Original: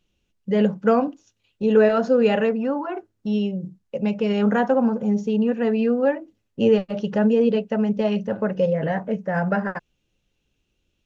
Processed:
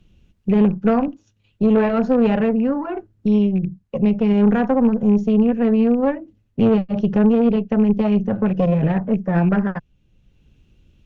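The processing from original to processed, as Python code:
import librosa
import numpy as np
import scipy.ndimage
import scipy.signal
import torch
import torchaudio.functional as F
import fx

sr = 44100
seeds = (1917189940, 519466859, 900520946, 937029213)

y = fx.rattle_buzz(x, sr, strikes_db=-26.0, level_db=-26.0)
y = fx.bass_treble(y, sr, bass_db=14, treble_db=-6)
y = fx.tube_stage(y, sr, drive_db=9.0, bias=0.7)
y = fx.band_squash(y, sr, depth_pct=40)
y = F.gain(torch.from_numpy(y), 1.0).numpy()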